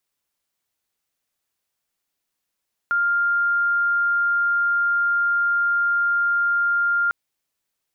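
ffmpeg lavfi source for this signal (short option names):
-f lavfi -i "sine=f=1400:d=4.2:r=44100,volume=1.06dB"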